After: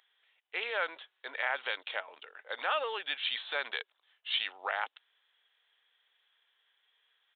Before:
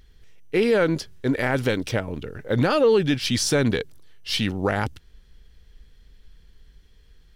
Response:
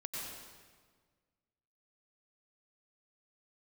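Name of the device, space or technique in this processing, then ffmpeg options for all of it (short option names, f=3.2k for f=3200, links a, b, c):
musical greeting card: -af "aresample=8000,aresample=44100,highpass=f=740:w=0.5412,highpass=f=740:w=1.3066,equalizer=f=3.8k:t=o:w=0.59:g=4,volume=-5.5dB"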